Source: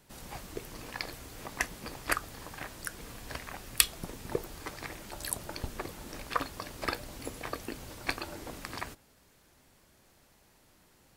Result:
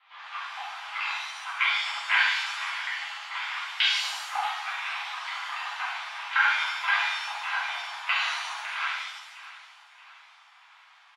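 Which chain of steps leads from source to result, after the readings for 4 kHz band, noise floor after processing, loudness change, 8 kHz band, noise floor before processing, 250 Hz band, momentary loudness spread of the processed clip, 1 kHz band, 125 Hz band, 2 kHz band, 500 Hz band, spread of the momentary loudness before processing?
+11.0 dB, −56 dBFS, +9.0 dB, −6.0 dB, −64 dBFS, below −40 dB, 13 LU, +10.0 dB, below −40 dB, +13.5 dB, −10.5 dB, 10 LU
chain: repeating echo 632 ms, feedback 46%, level −16.5 dB
single-sideband voice off tune +360 Hz 510–3,200 Hz
reverb with rising layers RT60 1 s, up +7 semitones, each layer −8 dB, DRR −11 dB

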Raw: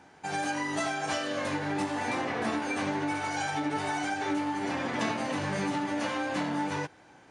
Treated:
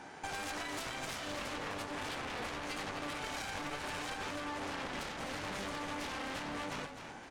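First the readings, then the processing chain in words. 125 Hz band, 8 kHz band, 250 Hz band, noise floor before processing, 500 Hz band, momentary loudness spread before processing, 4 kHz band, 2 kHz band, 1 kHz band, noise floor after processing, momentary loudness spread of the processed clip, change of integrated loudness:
−10.0 dB, −5.0 dB, −13.0 dB, −56 dBFS, −9.0 dB, 1 LU, −3.5 dB, −7.5 dB, −9.5 dB, −49 dBFS, 1 LU, −8.5 dB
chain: low-shelf EQ 210 Hz −5 dB
harmonic generator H 3 −6 dB, 4 −15 dB, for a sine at −19 dBFS
downward compressor 6 to 1, threshold −51 dBFS, peak gain reduction 19.5 dB
tube saturation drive 47 dB, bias 0.5
echo with shifted repeats 257 ms, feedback 35%, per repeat −33 Hz, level −8 dB
level +14 dB

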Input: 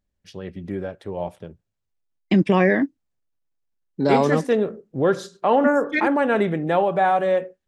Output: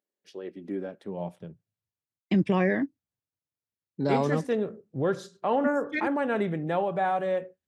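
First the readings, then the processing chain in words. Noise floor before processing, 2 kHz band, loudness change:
−79 dBFS, −8.0 dB, −7.5 dB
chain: high-pass filter sweep 390 Hz → 96 Hz, 0:00.26–0:01.95
level −8 dB

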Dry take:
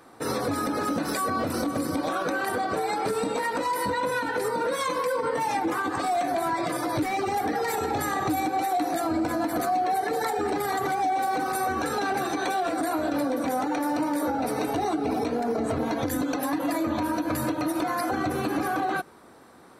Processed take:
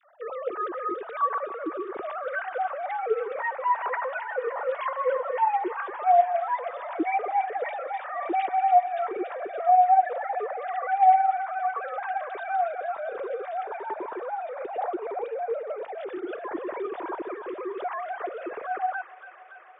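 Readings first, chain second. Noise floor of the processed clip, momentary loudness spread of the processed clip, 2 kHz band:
−43 dBFS, 13 LU, −3.0 dB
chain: three sine waves on the formant tracks
high-frequency loss of the air 170 metres
delay with a high-pass on its return 284 ms, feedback 80%, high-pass 1,600 Hz, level −9 dB

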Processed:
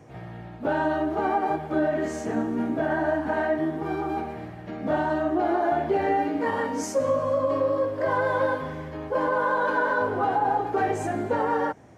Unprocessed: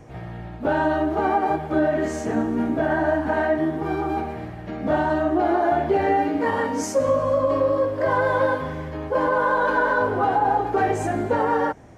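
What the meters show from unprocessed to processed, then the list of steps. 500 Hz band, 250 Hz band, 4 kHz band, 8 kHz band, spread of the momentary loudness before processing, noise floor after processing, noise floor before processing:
−3.5 dB, −3.5 dB, −3.5 dB, −3.5 dB, 7 LU, −40 dBFS, −35 dBFS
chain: high-pass filter 91 Hz
level −3.5 dB

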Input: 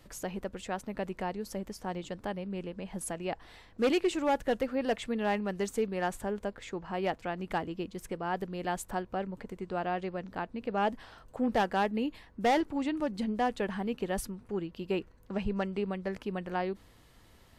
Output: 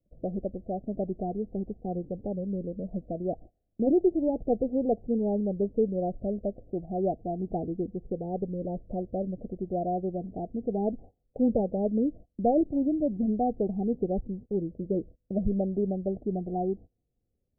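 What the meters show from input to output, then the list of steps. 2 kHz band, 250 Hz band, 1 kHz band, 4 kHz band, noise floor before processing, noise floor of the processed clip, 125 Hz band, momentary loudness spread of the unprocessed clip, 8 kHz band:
below −40 dB, +5.5 dB, −2.5 dB, below −40 dB, −58 dBFS, −78 dBFS, +6.0 dB, 10 LU, below −35 dB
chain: noise gate −47 dBFS, range −25 dB
Butterworth low-pass 740 Hz 96 dB per octave
phaser whose notches keep moving one way rising 0.33 Hz
level +6 dB

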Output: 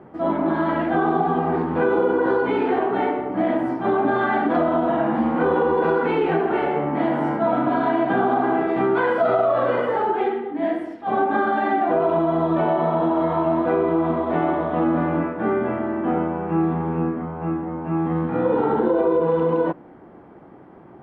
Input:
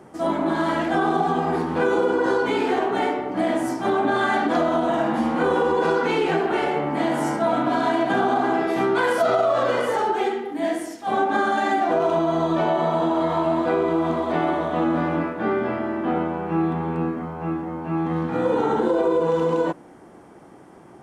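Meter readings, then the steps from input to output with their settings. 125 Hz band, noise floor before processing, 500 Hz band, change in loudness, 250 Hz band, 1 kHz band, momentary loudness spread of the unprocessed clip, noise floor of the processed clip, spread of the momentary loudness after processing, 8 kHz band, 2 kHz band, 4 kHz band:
+2.0 dB, −46 dBFS, +1.0 dB, +1.0 dB, +1.5 dB, +0.5 dB, 5 LU, −45 dBFS, 5 LU, below −25 dB, −1.5 dB, can't be measured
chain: high-frequency loss of the air 490 metres
level +2.5 dB

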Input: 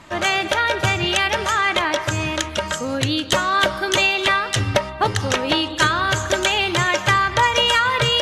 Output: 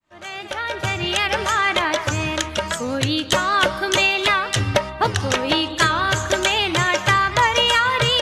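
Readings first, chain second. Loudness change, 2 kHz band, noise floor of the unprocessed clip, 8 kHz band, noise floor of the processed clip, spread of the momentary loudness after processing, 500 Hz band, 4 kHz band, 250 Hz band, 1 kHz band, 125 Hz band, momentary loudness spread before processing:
−0.5 dB, −0.5 dB, −30 dBFS, −0.5 dB, −33 dBFS, 8 LU, −0.5 dB, −0.5 dB, −0.5 dB, −0.5 dB, −0.5 dB, 6 LU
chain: fade in at the beginning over 1.41 s
wow of a warped record 78 rpm, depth 100 cents

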